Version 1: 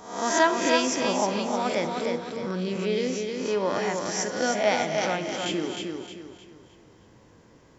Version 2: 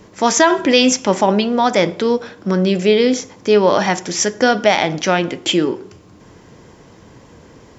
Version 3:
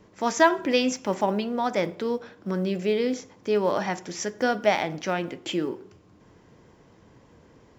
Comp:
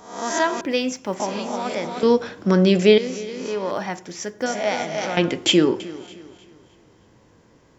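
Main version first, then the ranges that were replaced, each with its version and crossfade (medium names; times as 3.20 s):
1
0.61–1.20 s: from 3
2.03–2.98 s: from 2
3.71–4.46 s: from 3
5.17–5.80 s: from 2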